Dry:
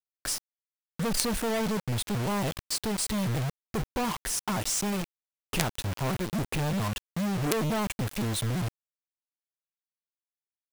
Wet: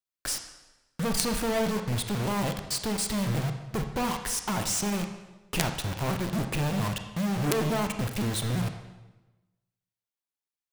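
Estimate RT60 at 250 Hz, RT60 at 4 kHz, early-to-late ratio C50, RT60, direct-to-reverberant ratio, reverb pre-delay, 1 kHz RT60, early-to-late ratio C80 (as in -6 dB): 1.1 s, 0.95 s, 8.0 dB, 1.1 s, 6.0 dB, 28 ms, 1.0 s, 10.0 dB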